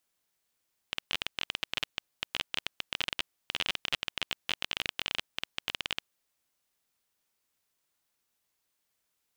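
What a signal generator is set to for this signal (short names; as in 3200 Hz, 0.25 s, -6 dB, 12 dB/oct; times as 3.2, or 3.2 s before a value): random clicks 20/s -12.5 dBFS 5.07 s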